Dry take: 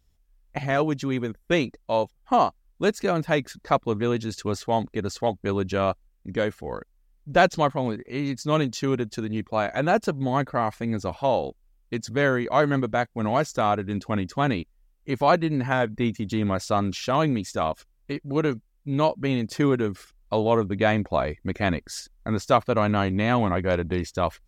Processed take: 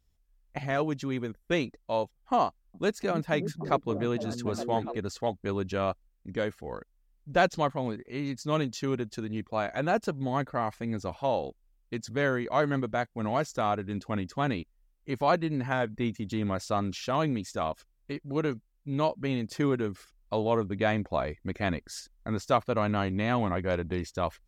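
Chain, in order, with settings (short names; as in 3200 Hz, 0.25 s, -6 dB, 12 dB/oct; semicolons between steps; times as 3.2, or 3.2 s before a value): 2.45–4.97 delay with a stepping band-pass 0.289 s, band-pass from 180 Hz, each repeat 0.7 oct, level -2.5 dB; gain -5.5 dB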